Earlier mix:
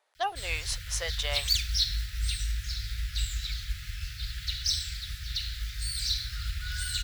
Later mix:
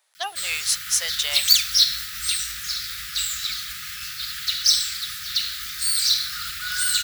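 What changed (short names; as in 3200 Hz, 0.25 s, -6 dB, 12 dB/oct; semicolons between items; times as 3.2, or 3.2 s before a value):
background: remove fixed phaser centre 460 Hz, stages 4; master: add tilt +4.5 dB/oct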